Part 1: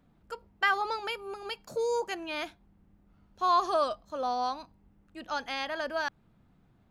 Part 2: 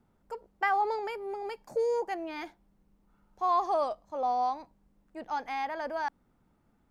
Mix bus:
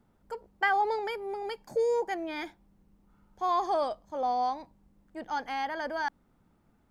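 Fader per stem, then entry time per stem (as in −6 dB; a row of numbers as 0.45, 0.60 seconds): −11.0, +1.5 decibels; 0.00, 0.00 seconds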